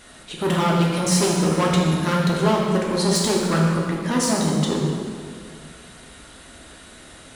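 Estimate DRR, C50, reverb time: -3.5 dB, 0.5 dB, 2.0 s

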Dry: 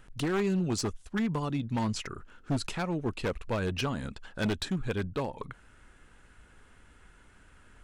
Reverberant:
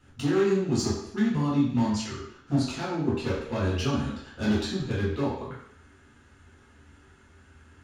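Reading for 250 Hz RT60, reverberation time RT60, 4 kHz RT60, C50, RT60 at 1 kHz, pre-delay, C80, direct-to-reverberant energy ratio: 0.70 s, 0.65 s, 0.70 s, 2.0 dB, 0.70 s, 3 ms, 5.0 dB, -10.0 dB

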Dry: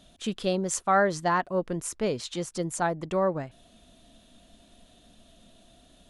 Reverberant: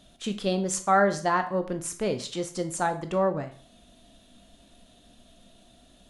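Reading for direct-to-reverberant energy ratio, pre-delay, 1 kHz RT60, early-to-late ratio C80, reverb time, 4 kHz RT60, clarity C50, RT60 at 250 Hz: 8.0 dB, 5 ms, 0.40 s, 16.5 dB, 0.45 s, 0.40 s, 12.5 dB, 0.45 s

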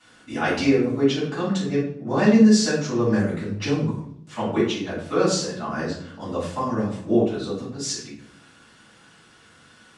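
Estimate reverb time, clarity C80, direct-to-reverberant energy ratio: 0.70 s, 8.0 dB, -12.0 dB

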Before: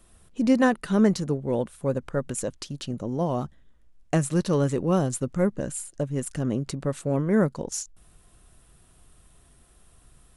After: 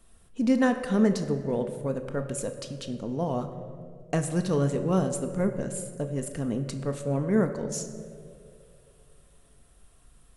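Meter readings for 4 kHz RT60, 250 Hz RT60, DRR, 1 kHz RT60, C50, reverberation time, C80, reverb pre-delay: 1.2 s, 2.2 s, 6.0 dB, 2.0 s, 9.5 dB, 2.5 s, 10.5 dB, 4 ms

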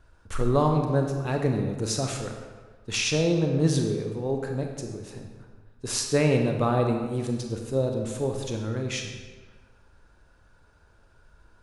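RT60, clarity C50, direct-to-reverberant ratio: 1.5 s, 4.0 dB, 2.5 dB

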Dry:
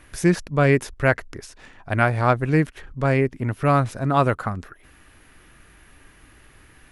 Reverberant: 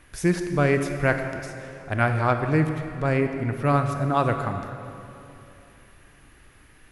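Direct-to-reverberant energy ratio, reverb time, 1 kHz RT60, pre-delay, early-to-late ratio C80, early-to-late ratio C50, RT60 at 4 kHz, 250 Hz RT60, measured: 6.0 dB, 2.9 s, 2.8 s, 21 ms, 7.5 dB, 7.0 dB, 2.3 s, 3.1 s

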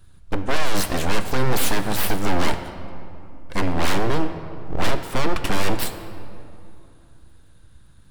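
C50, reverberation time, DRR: 9.5 dB, 2.7 s, 8.0 dB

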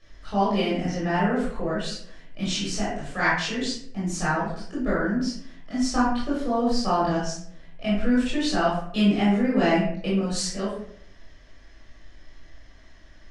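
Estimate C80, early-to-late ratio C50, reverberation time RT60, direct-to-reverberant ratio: 5.5 dB, 1.0 dB, 0.65 s, -9.5 dB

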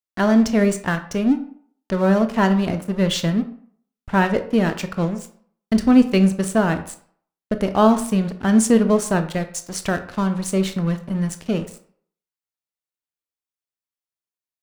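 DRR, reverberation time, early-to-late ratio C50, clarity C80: 8.5 dB, 0.55 s, 12.5 dB, 16.0 dB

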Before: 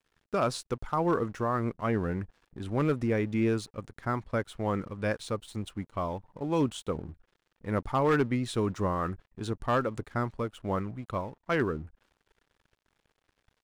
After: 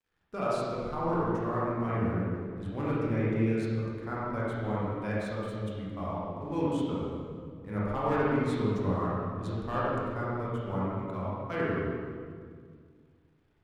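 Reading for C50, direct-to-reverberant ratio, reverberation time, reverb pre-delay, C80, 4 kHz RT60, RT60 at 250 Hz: -4.0 dB, -8.0 dB, 1.9 s, 22 ms, -1.5 dB, 1.5 s, 2.6 s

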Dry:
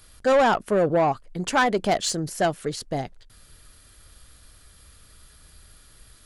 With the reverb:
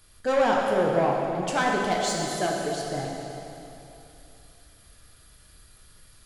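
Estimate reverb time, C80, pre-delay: 2.9 s, 1.5 dB, 5 ms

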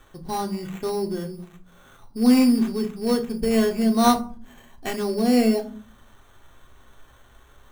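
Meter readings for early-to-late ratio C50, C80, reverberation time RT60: 14.5 dB, 19.0 dB, 0.50 s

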